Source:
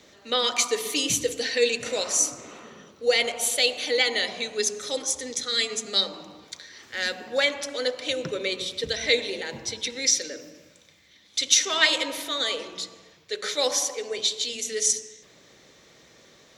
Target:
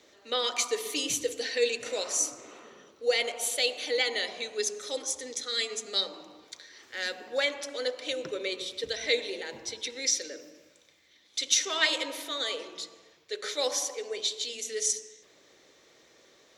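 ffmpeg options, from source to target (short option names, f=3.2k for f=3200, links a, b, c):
-af "lowshelf=f=250:t=q:w=1.5:g=-6.5,volume=-5.5dB"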